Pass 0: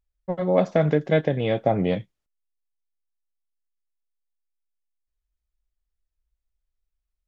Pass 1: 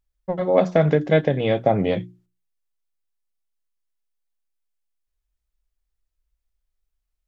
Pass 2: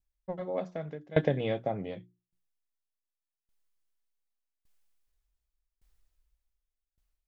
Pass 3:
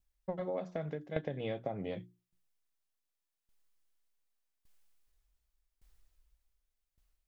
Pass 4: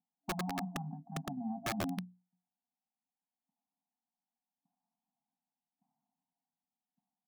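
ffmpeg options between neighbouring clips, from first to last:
ffmpeg -i in.wav -af "bandreject=frequency=60:width_type=h:width=6,bandreject=frequency=120:width_type=h:width=6,bandreject=frequency=180:width_type=h:width=6,bandreject=frequency=240:width_type=h:width=6,bandreject=frequency=300:width_type=h:width=6,bandreject=frequency=360:width_type=h:width=6,volume=3dB" out.wav
ffmpeg -i in.wav -af "dynaudnorm=framelen=710:gausssize=5:maxgain=16.5dB,aeval=exprs='val(0)*pow(10,-23*if(lt(mod(0.86*n/s,1),2*abs(0.86)/1000),1-mod(0.86*n/s,1)/(2*abs(0.86)/1000),(mod(0.86*n/s,1)-2*abs(0.86)/1000)/(1-2*abs(0.86)/1000))/20)':channel_layout=same,volume=-5dB" out.wav
ffmpeg -i in.wav -af "acompressor=threshold=-36dB:ratio=8,volume=3dB" out.wav
ffmpeg -i in.wav -af "asuperpass=centerf=390:order=12:qfactor=0.55,afftfilt=real='re*(1-between(b*sr/4096,280,680))':imag='im*(1-between(b*sr/4096,280,680))':win_size=4096:overlap=0.75,aeval=exprs='(mod(75*val(0)+1,2)-1)/75':channel_layout=same,volume=8dB" out.wav

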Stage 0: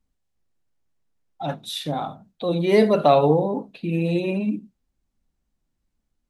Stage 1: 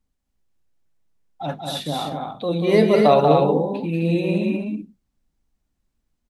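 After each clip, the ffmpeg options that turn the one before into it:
ffmpeg -i in.wav -af "aecho=1:1:186.6|256.6:0.562|0.562" out.wav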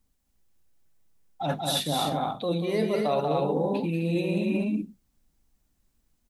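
ffmpeg -i in.wav -af "areverse,acompressor=threshold=-26dB:ratio=6,areverse,crystalizer=i=1:c=0,volume=2.5dB" out.wav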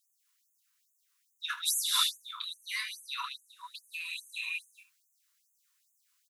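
ffmpeg -i in.wav -af "aecho=1:1:25|79:0.376|0.2,afftfilt=real='re*gte(b*sr/1024,910*pow(6400/910,0.5+0.5*sin(2*PI*2.4*pts/sr)))':imag='im*gte(b*sr/1024,910*pow(6400/910,0.5+0.5*sin(2*PI*2.4*pts/sr)))':win_size=1024:overlap=0.75,volume=4.5dB" out.wav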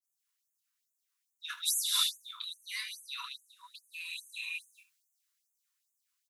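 ffmpeg -i in.wav -af "adynamicequalizer=threshold=0.00447:dfrequency=2000:dqfactor=0.7:tfrequency=2000:tqfactor=0.7:attack=5:release=100:ratio=0.375:range=4:mode=boostabove:tftype=highshelf,volume=-8.5dB" out.wav

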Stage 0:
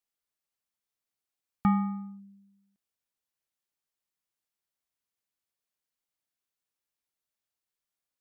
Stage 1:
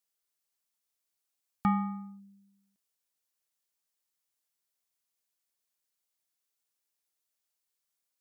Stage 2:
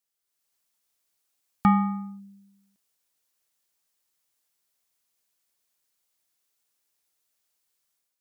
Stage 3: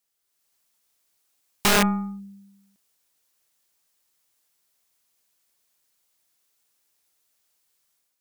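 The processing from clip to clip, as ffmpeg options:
ffmpeg -i in.wav -af "bass=frequency=250:gain=-5,treble=frequency=4000:gain=6,bandreject=frequency=387.7:width_type=h:width=4,bandreject=frequency=775.4:width_type=h:width=4,bandreject=frequency=1163.1:width_type=h:width=4,bandreject=frequency=1550.8:width_type=h:width=4,bandreject=frequency=1938.5:width_type=h:width=4,bandreject=frequency=2326.2:width_type=h:width=4,bandreject=frequency=2713.9:width_type=h:width=4,bandreject=frequency=3101.6:width_type=h:width=4,bandreject=frequency=3489.3:width_type=h:width=4,bandreject=frequency=3877:width_type=h:width=4,bandreject=frequency=4264.7:width_type=h:width=4,bandreject=frequency=4652.4:width_type=h:width=4,bandreject=frequency=5040.1:width_type=h:width=4,bandreject=frequency=5427.8:width_type=h:width=4,bandreject=frequency=5815.5:width_type=h:width=4,bandreject=frequency=6203.2:width_type=h:width=4,bandreject=frequency=6590.9:width_type=h:width=4,bandreject=frequency=6978.6:width_type=h:width=4,bandreject=frequency=7366.3:width_type=h:width=4,bandreject=frequency=7754:width_type=h:width=4,bandreject=frequency=8141.7:width_type=h:width=4,bandreject=frequency=8529.4:width_type=h:width=4,bandreject=frequency=8917.1:width_type=h:width=4,bandreject=frequency=9304.8:width_type=h:width=4,bandreject=frequency=9692.5:width_type=h:width=4,bandreject=frequency=10080.2:width_type=h:width=4,bandreject=frequency=10467.9:width_type=h:width=4,bandreject=frequency=10855.6:width_type=h:width=4,bandreject=frequency=11243.3:width_type=h:width=4,bandreject=frequency=11631:width_type=h:width=4,bandreject=frequency=12018.7:width_type=h:width=4,bandreject=frequency=12406.4:width_type=h:width=4,bandreject=frequency=12794.1:width_type=h:width=4,bandreject=frequency=13181.8:width_type=h:width=4,bandreject=frequency=13569.5:width_type=h:width=4,bandreject=frequency=13957.2:width_type=h:width=4,bandreject=frequency=14344.9:width_type=h:width=4,bandreject=frequency=14732.6:width_type=h:width=4" out.wav
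ffmpeg -i in.wav -af "dynaudnorm=framelen=140:gausssize=5:maxgain=7.5dB" out.wav
ffmpeg -i in.wav -af "aeval=exprs='0.316*(cos(1*acos(clip(val(0)/0.316,-1,1)))-cos(1*PI/2))+0.0562*(cos(4*acos(clip(val(0)/0.316,-1,1)))-cos(4*PI/2))':channel_layout=same,aeval=exprs='(mod(7.5*val(0)+1,2)-1)/7.5':channel_layout=same,volume=5.5dB" out.wav

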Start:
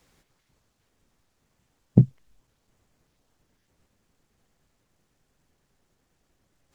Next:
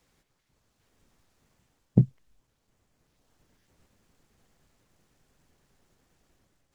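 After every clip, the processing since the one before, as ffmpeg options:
ffmpeg -i in.wav -af "dynaudnorm=framelen=490:gausssize=3:maxgain=8.5dB,volume=-5.5dB" out.wav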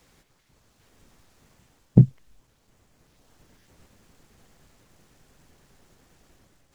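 ffmpeg -i in.wav -af "alimiter=level_in=10.5dB:limit=-1dB:release=50:level=0:latency=1,volume=-1dB" out.wav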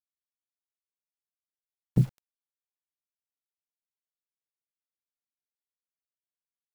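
ffmpeg -i in.wav -af "alimiter=limit=-7.5dB:level=0:latency=1:release=57,acrusher=bits=6:mix=0:aa=0.000001,volume=-5dB" out.wav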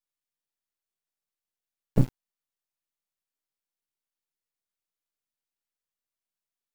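ffmpeg -i in.wav -af "aeval=exprs='max(val(0),0)':channel_layout=same,volume=5.5dB" out.wav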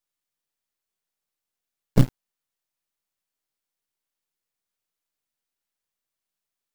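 ffmpeg -i in.wav -af "acrusher=bits=5:mode=log:mix=0:aa=0.000001,volume=4.5dB" out.wav

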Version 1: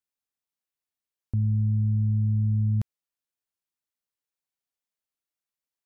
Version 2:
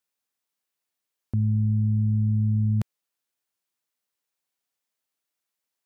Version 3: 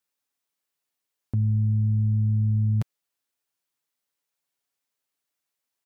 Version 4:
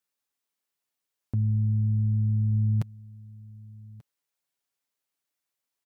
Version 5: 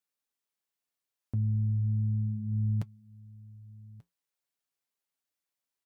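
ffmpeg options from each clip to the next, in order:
ffmpeg -i in.wav -af "highpass=frequency=180:poles=1,volume=6.5dB" out.wav
ffmpeg -i in.wav -af "aecho=1:1:7.1:0.35" out.wav
ffmpeg -i in.wav -af "aecho=1:1:1187:0.0841,volume=-2dB" out.wav
ffmpeg -i in.wav -af "flanger=delay=3.5:depth=5.2:regen=-70:speed=0.37:shape=triangular" out.wav

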